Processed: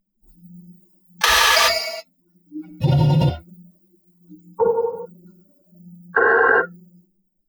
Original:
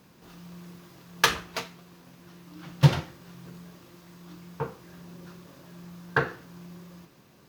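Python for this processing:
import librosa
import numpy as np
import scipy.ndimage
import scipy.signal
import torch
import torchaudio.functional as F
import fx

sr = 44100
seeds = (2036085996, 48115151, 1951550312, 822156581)

y = fx.bin_expand(x, sr, power=3.0)
y = fx.rev_gated(y, sr, seeds[0], gate_ms=440, shape='falling', drr_db=8.5)
y = fx.env_flatten(y, sr, amount_pct=100)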